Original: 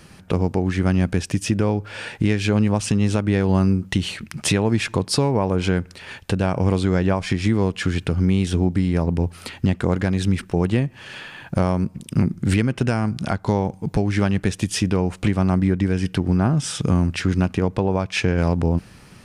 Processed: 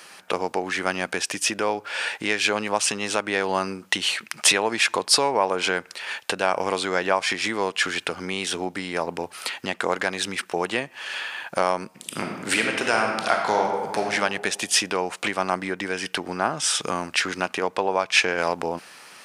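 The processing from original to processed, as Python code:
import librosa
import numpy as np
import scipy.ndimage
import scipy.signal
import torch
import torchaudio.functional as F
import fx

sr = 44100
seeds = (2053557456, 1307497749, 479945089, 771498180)

y = fx.reverb_throw(x, sr, start_s=11.93, length_s=2.11, rt60_s=1.5, drr_db=1.5)
y = scipy.signal.sosfilt(scipy.signal.butter(2, 690.0, 'highpass', fs=sr, output='sos'), y)
y = y * 10.0 ** (6.0 / 20.0)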